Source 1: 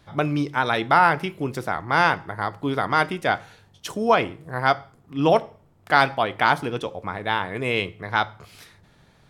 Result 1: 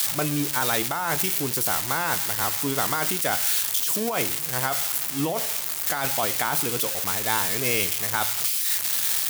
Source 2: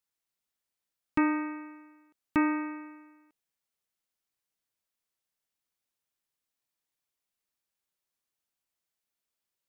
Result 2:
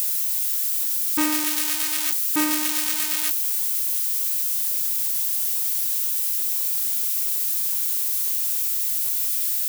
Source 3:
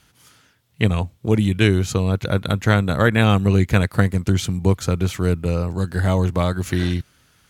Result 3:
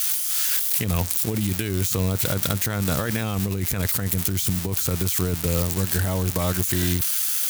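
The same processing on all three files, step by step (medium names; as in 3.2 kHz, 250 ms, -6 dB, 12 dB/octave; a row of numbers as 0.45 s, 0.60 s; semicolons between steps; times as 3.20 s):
zero-crossing glitches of -11.5 dBFS; treble shelf 10 kHz +4 dB; compressor with a negative ratio -19 dBFS, ratio -1; trim -4 dB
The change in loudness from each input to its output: 0.0 LU, +10.5 LU, -2.5 LU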